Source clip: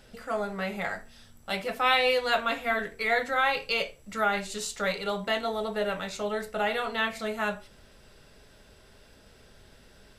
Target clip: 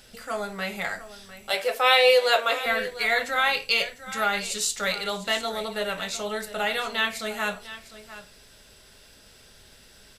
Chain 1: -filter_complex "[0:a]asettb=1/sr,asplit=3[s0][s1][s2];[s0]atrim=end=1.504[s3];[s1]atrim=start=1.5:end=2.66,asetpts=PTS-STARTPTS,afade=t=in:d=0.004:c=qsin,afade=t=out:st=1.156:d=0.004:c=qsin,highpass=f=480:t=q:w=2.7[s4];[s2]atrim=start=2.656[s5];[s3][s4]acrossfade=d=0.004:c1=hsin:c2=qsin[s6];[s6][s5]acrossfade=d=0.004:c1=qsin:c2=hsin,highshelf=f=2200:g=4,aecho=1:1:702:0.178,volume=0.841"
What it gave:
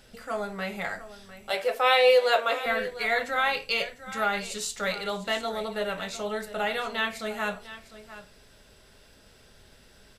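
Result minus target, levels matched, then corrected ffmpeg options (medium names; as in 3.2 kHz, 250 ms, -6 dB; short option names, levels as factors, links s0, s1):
4 kHz band -2.5 dB
-filter_complex "[0:a]asettb=1/sr,asplit=3[s0][s1][s2];[s0]atrim=end=1.504[s3];[s1]atrim=start=1.5:end=2.66,asetpts=PTS-STARTPTS,afade=t=in:d=0.004:c=qsin,afade=t=out:st=1.156:d=0.004:c=qsin,highpass=f=480:t=q:w=2.7[s4];[s2]atrim=start=2.656[s5];[s3][s4]acrossfade=d=0.004:c1=hsin:c2=qsin[s6];[s6][s5]acrossfade=d=0.004:c1=qsin:c2=hsin,highshelf=f=2200:g=11.5,aecho=1:1:702:0.178,volume=0.841"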